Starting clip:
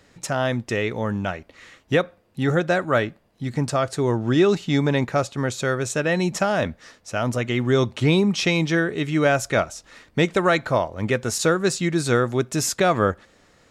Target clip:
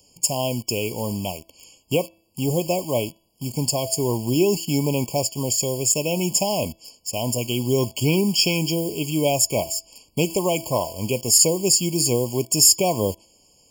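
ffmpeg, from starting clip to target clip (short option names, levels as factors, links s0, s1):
-filter_complex "[0:a]bandreject=f=329.5:t=h:w=4,bandreject=f=659:t=h:w=4,bandreject=f=988.5:t=h:w=4,bandreject=f=1318:t=h:w=4,bandreject=f=1647.5:t=h:w=4,bandreject=f=1977:t=h:w=4,bandreject=f=2306.5:t=h:w=4,bandreject=f=2636:t=h:w=4,bandreject=f=2965.5:t=h:w=4,bandreject=f=3295:t=h:w=4,bandreject=f=3624.5:t=h:w=4,bandreject=f=3954:t=h:w=4,bandreject=f=4283.5:t=h:w=4,bandreject=f=4613:t=h:w=4,bandreject=f=4942.5:t=h:w=4,bandreject=f=5272:t=h:w=4,bandreject=f=5601.5:t=h:w=4,bandreject=f=5931:t=h:w=4,bandreject=f=6260.5:t=h:w=4,bandreject=f=6590:t=h:w=4,bandreject=f=6919.5:t=h:w=4,asplit=2[s0][s1];[s1]acrusher=bits=5:mix=0:aa=0.000001,volume=0.668[s2];[s0][s2]amix=inputs=2:normalize=0,aexciter=amount=5.3:drive=6.4:freq=3400,afftfilt=real='re*eq(mod(floor(b*sr/1024/1100),2),0)':imag='im*eq(mod(floor(b*sr/1024/1100),2),0)':win_size=1024:overlap=0.75,volume=0.501"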